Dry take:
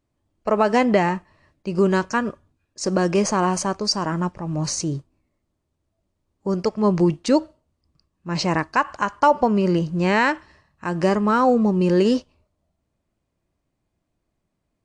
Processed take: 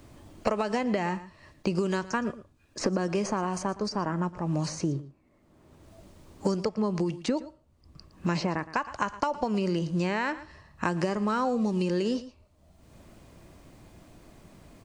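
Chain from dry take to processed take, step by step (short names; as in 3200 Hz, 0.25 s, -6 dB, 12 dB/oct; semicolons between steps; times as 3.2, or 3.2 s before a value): compressor, threshold -18 dBFS, peak gain reduction 7.5 dB; echo 0.114 s -18.5 dB; three-band squash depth 100%; gain -6 dB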